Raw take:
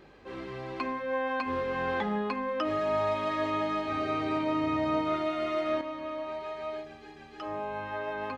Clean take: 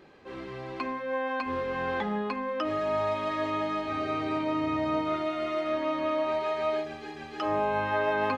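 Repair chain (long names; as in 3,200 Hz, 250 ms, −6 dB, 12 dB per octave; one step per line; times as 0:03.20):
hum removal 47.9 Hz, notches 8
level correction +8 dB, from 0:05.81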